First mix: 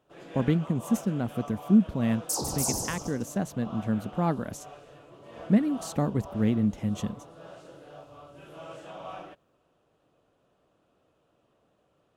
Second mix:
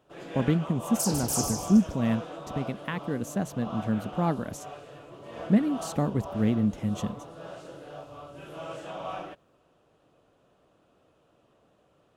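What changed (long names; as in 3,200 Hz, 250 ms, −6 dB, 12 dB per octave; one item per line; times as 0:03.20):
first sound +4.5 dB
second sound: entry −1.30 s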